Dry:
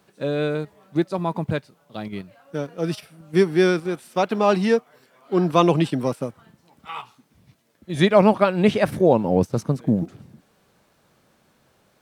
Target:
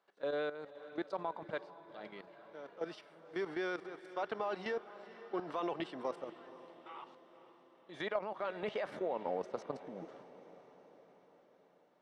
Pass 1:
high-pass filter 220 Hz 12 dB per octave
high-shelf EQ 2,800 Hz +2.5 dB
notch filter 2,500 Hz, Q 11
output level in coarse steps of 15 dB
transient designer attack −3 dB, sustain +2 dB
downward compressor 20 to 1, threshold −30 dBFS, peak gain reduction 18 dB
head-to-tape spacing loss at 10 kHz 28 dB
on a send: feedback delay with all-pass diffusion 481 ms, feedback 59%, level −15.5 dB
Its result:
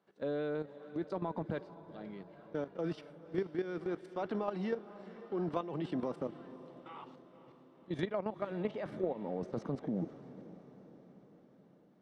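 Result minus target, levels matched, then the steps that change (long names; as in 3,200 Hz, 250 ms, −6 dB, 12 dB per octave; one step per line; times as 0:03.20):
250 Hz band +5.0 dB
change: high-pass filter 630 Hz 12 dB per octave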